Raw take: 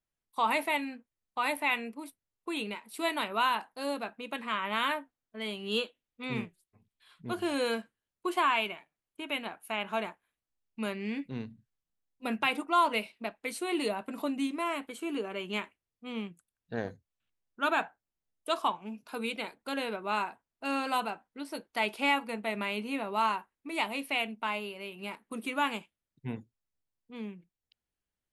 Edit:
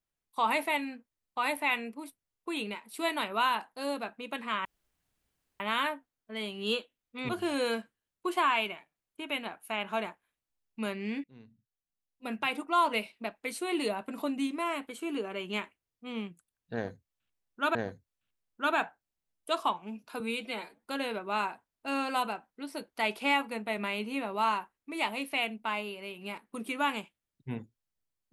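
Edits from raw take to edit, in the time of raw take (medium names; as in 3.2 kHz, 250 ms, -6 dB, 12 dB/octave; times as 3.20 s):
4.65 s: insert room tone 0.95 s
6.34–7.29 s: delete
11.24–12.94 s: fade in, from -21.5 dB
16.74–17.75 s: loop, 2 plays
19.19–19.62 s: stretch 1.5×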